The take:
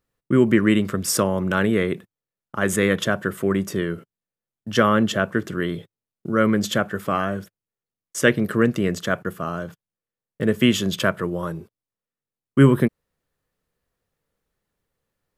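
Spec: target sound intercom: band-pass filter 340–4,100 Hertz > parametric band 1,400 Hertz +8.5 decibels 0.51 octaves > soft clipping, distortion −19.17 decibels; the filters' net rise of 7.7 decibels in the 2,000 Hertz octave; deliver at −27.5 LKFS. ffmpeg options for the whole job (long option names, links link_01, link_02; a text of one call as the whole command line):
ffmpeg -i in.wav -af "highpass=340,lowpass=4100,equalizer=frequency=1400:width_type=o:width=0.51:gain=8.5,equalizer=frequency=2000:width_type=o:gain=3.5,asoftclip=threshold=-4.5dB,volume=-6dB" out.wav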